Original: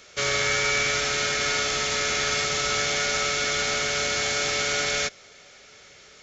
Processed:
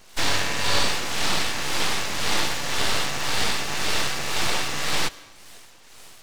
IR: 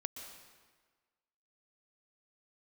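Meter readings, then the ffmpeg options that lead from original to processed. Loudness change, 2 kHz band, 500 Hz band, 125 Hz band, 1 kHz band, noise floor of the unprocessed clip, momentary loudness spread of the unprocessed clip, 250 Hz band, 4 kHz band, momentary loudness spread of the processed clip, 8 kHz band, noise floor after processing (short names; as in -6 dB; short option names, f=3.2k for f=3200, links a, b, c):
-1.0 dB, -2.5 dB, -4.0 dB, +2.5 dB, +1.0 dB, -51 dBFS, 2 LU, +4.5 dB, +0.5 dB, 3 LU, n/a, -48 dBFS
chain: -filter_complex "[0:a]bandreject=f=450:w=15,acrossover=split=590[a][b];[a]aeval=exprs='val(0)*(1-0.7/2+0.7/2*cos(2*PI*1.9*n/s))':c=same[c];[b]aeval=exprs='val(0)*(1-0.7/2-0.7/2*cos(2*PI*1.9*n/s))':c=same[d];[c][d]amix=inputs=2:normalize=0,aeval=exprs='abs(val(0))':c=same,acrossover=split=5600[e][f];[f]acompressor=threshold=-43dB:ratio=4:attack=1:release=60[g];[e][g]amix=inputs=2:normalize=0,asplit=2[h][i];[1:a]atrim=start_sample=2205,afade=t=out:st=0.36:d=0.01,atrim=end_sample=16317[j];[i][j]afir=irnorm=-1:irlink=0,volume=-11dB[k];[h][k]amix=inputs=2:normalize=0,volume=6.5dB"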